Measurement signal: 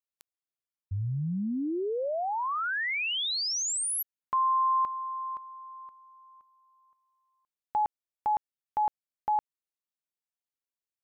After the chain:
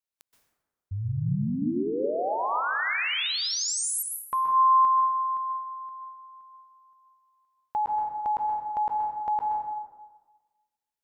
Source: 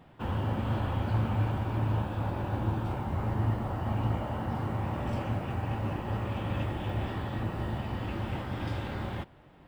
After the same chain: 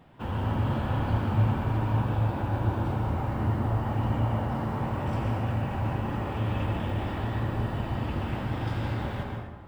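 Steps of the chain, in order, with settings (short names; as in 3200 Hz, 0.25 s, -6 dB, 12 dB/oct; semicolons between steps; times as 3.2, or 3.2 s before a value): plate-style reverb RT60 1.3 s, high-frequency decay 0.5×, pre-delay 0.115 s, DRR 0.5 dB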